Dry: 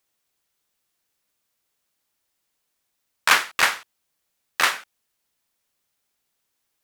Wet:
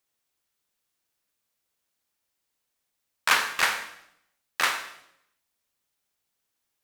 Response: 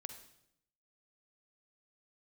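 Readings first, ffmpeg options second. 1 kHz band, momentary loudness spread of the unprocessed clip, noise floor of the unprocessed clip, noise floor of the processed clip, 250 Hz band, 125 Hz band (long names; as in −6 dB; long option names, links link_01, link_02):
−4.0 dB, 16 LU, −77 dBFS, −81 dBFS, −4.0 dB, can't be measured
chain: -filter_complex "[1:a]atrim=start_sample=2205[link_01];[0:a][link_01]afir=irnorm=-1:irlink=0"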